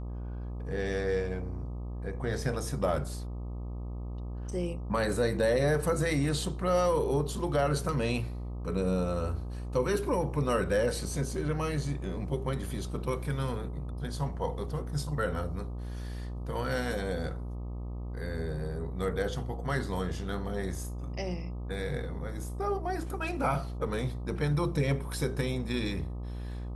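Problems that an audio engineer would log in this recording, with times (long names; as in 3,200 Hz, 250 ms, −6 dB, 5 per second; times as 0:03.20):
mains buzz 60 Hz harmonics 21 −37 dBFS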